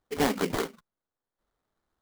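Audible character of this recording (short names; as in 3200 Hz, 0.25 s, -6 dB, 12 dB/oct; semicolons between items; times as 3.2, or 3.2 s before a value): aliases and images of a low sample rate 2600 Hz, jitter 20%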